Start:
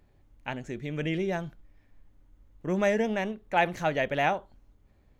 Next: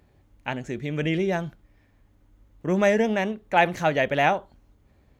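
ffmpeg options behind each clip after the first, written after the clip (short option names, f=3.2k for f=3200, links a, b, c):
-af "highpass=46,volume=5dB"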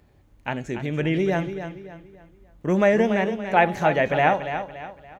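-filter_complex "[0:a]bandreject=f=277.8:t=h:w=4,bandreject=f=555.6:t=h:w=4,bandreject=f=833.4:t=h:w=4,bandreject=f=1.1112k:t=h:w=4,bandreject=f=1.389k:t=h:w=4,bandreject=f=1.6668k:t=h:w=4,bandreject=f=1.9446k:t=h:w=4,bandreject=f=2.2224k:t=h:w=4,bandreject=f=2.5002k:t=h:w=4,bandreject=f=2.778k:t=h:w=4,bandreject=f=3.0558k:t=h:w=4,bandreject=f=3.3336k:t=h:w=4,bandreject=f=3.6114k:t=h:w=4,bandreject=f=3.8892k:t=h:w=4,bandreject=f=4.167k:t=h:w=4,bandreject=f=4.4448k:t=h:w=4,bandreject=f=4.7226k:t=h:w=4,bandreject=f=5.0004k:t=h:w=4,bandreject=f=5.2782k:t=h:w=4,bandreject=f=5.556k:t=h:w=4,bandreject=f=5.8338k:t=h:w=4,bandreject=f=6.1116k:t=h:w=4,bandreject=f=6.3894k:t=h:w=4,bandreject=f=6.6672k:t=h:w=4,bandreject=f=6.945k:t=h:w=4,bandreject=f=7.2228k:t=h:w=4,bandreject=f=7.5006k:t=h:w=4,bandreject=f=7.7784k:t=h:w=4,bandreject=f=8.0562k:t=h:w=4,bandreject=f=8.334k:t=h:w=4,bandreject=f=8.6118k:t=h:w=4,bandreject=f=8.8896k:t=h:w=4,bandreject=f=9.1674k:t=h:w=4,bandreject=f=9.4452k:t=h:w=4,bandreject=f=9.723k:t=h:w=4,bandreject=f=10.0008k:t=h:w=4,bandreject=f=10.2786k:t=h:w=4,asplit=2[a][b];[b]adelay=285,lowpass=f=4.7k:p=1,volume=-9.5dB,asplit=2[c][d];[d]adelay=285,lowpass=f=4.7k:p=1,volume=0.38,asplit=2[e][f];[f]adelay=285,lowpass=f=4.7k:p=1,volume=0.38,asplit=2[g][h];[h]adelay=285,lowpass=f=4.7k:p=1,volume=0.38[i];[c][e][g][i]amix=inputs=4:normalize=0[j];[a][j]amix=inputs=2:normalize=0,acrossover=split=2700[k][l];[l]acompressor=threshold=-42dB:ratio=4:attack=1:release=60[m];[k][m]amix=inputs=2:normalize=0,volume=2dB"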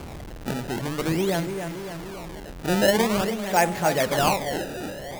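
-af "aeval=exprs='val(0)+0.5*0.0398*sgn(val(0))':c=same,acrusher=samples=23:mix=1:aa=0.000001:lfo=1:lforange=36.8:lforate=0.47,bandreject=f=50:t=h:w=6,bandreject=f=100:t=h:w=6,bandreject=f=150:t=h:w=6,volume=-3dB"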